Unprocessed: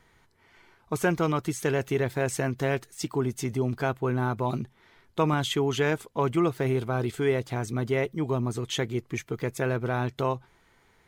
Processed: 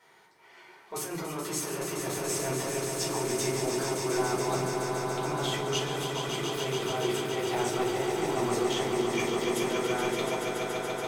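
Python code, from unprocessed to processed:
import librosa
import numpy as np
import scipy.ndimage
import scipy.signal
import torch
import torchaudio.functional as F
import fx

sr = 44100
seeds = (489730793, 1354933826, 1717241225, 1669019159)

p1 = scipy.signal.sosfilt(scipy.signal.butter(2, 370.0, 'highpass', fs=sr, output='sos'), x)
p2 = fx.over_compress(p1, sr, threshold_db=-35.0, ratio=-1.0)
p3 = p2 + fx.echo_swell(p2, sr, ms=142, loudest=5, wet_db=-7.0, dry=0)
p4 = fx.room_shoebox(p3, sr, seeds[0], volume_m3=220.0, walls='furnished', distance_m=4.5)
y = F.gain(torch.from_numpy(p4), -7.5).numpy()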